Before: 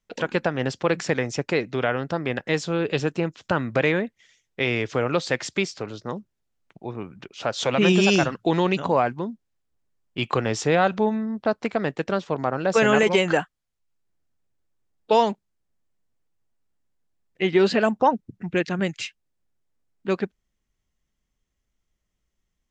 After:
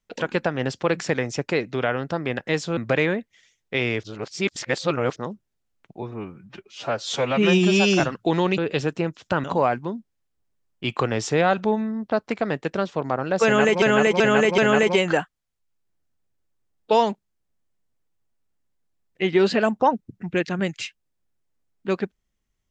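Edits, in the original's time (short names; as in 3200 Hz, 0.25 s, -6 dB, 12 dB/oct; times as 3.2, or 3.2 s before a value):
2.77–3.63 move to 8.78
4.89–6.02 reverse
6.88–8.2 stretch 1.5×
12.78–13.16 loop, 4 plays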